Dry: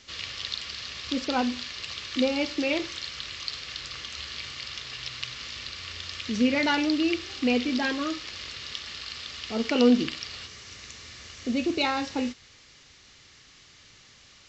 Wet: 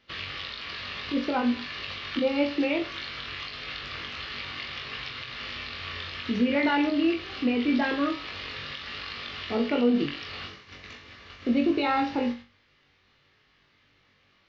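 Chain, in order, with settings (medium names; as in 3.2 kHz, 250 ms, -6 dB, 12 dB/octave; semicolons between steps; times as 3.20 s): gate -43 dBFS, range -14 dB; bass shelf 100 Hz -5.5 dB; in parallel at +1.5 dB: compression, threshold -38 dBFS, peak gain reduction 21 dB; on the sum: peak limiter -16.5 dBFS, peak gain reduction 10 dB; Gaussian low-pass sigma 2.5 samples; on a send: flutter echo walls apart 3.6 m, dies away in 0.29 s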